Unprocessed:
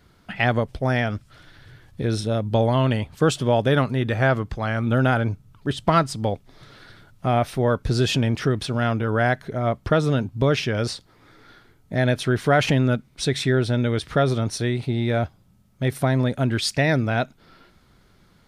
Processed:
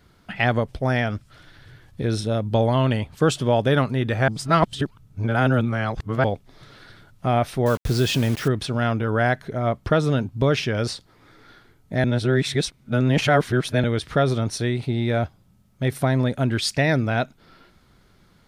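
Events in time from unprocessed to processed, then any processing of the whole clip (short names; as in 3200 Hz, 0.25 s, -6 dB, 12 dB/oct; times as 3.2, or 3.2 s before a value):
4.28–6.24 reverse
7.66–8.48 requantised 6-bit, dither none
12.04–13.84 reverse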